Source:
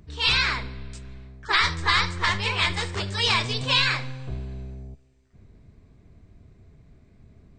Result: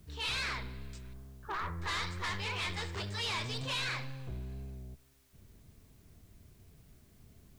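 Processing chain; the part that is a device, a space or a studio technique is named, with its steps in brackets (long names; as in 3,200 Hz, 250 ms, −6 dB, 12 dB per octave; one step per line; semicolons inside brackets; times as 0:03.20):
0:01.13–0:01.82: low-pass filter 1,400 Hz 24 dB per octave
compact cassette (soft clipping −25 dBFS, distortion −7 dB; low-pass filter 8,000 Hz 12 dB per octave; tape wow and flutter; white noise bed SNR 30 dB)
level −7 dB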